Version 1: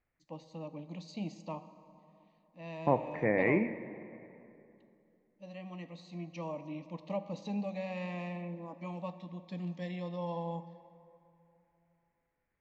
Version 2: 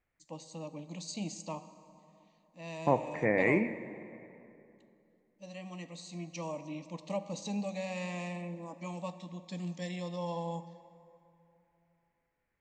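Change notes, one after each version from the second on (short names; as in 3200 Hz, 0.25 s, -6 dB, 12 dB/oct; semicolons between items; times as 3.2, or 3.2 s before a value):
master: remove air absorption 230 m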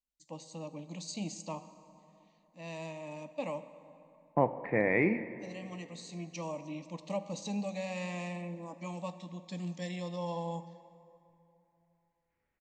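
second voice: entry +1.50 s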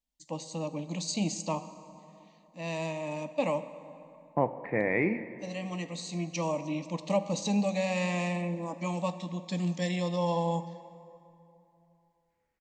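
first voice +8.0 dB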